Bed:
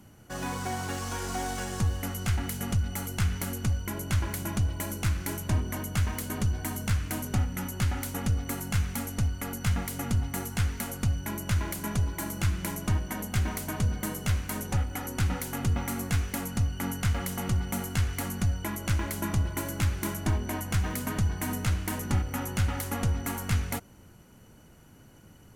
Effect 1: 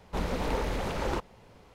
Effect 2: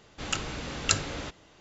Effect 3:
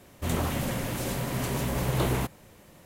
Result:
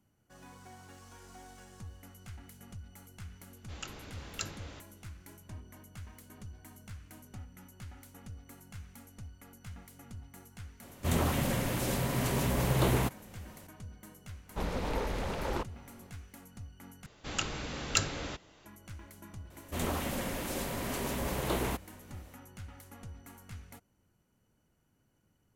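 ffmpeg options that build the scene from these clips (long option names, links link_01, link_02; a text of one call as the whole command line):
ffmpeg -i bed.wav -i cue0.wav -i cue1.wav -i cue2.wav -filter_complex "[2:a]asplit=2[link_01][link_02];[3:a]asplit=2[link_03][link_04];[0:a]volume=-19.5dB[link_05];[link_01]asoftclip=type=tanh:threshold=-7dB[link_06];[link_02]acontrast=62[link_07];[link_04]equalizer=frequency=120:width=1.9:gain=-11[link_08];[link_05]asplit=2[link_09][link_10];[link_09]atrim=end=17.064[link_11];[link_07]atrim=end=1.6,asetpts=PTS-STARTPTS,volume=-9dB[link_12];[link_10]atrim=start=18.656[link_13];[link_06]atrim=end=1.6,asetpts=PTS-STARTPTS,volume=-12.5dB,afade=type=in:duration=0.004:curve=hsin,afade=type=out:start_time=1.596:duration=0.004:curve=hsin,adelay=3500[link_14];[link_03]atrim=end=2.85,asetpts=PTS-STARTPTS,volume=-1dB,afade=type=in:duration=0.004:curve=hsin,afade=type=out:start_time=2.846:duration=0.004:curve=hsin,adelay=477162S[link_15];[1:a]atrim=end=1.74,asetpts=PTS-STARTPTS,volume=-3.5dB,afade=type=in:duration=0.1,afade=type=out:start_time=1.64:duration=0.1,adelay=14430[link_16];[link_08]atrim=end=2.85,asetpts=PTS-STARTPTS,volume=-3.5dB,afade=type=in:duration=0.004:curve=hsin,afade=type=out:start_time=2.846:duration=0.004:curve=hsin,adelay=19500[link_17];[link_11][link_12]acrossfade=duration=0.004:curve1=hsin:curve2=hsin[link_18];[link_18][link_13]acrossfade=duration=0.004:curve1=hsin:curve2=hsin[link_19];[link_19][link_14][link_15][link_16][link_17]amix=inputs=5:normalize=0" out.wav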